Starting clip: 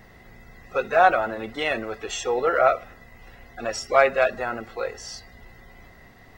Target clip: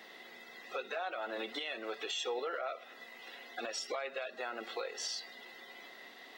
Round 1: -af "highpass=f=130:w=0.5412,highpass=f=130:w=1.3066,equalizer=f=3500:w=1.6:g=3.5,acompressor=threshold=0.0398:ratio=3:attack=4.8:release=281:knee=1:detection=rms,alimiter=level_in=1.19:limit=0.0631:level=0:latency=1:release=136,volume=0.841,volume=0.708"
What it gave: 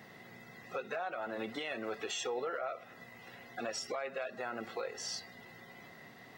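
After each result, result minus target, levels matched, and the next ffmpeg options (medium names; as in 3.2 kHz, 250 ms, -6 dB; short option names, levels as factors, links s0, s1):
125 Hz band +16.5 dB; 4 kHz band -4.0 dB
-af "highpass=f=280:w=0.5412,highpass=f=280:w=1.3066,equalizer=f=3500:w=1.6:g=3.5,acompressor=threshold=0.0398:ratio=3:attack=4.8:release=281:knee=1:detection=rms,alimiter=level_in=1.19:limit=0.0631:level=0:latency=1:release=136,volume=0.841,volume=0.708"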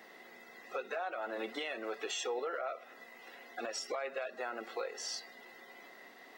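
4 kHz band -3.5 dB
-af "highpass=f=280:w=0.5412,highpass=f=280:w=1.3066,equalizer=f=3500:w=1.6:g=13,acompressor=threshold=0.0398:ratio=3:attack=4.8:release=281:knee=1:detection=rms,alimiter=level_in=1.19:limit=0.0631:level=0:latency=1:release=136,volume=0.841,volume=0.708"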